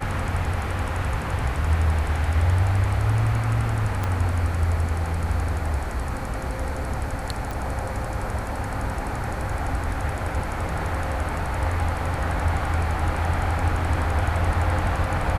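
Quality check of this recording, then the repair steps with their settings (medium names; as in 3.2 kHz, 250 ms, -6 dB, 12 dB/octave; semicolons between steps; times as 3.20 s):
4.04 s: pop -13 dBFS
7.51 s: pop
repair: de-click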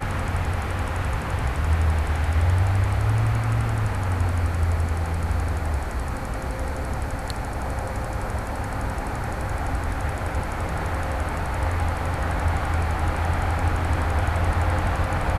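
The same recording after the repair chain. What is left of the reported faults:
4.04 s: pop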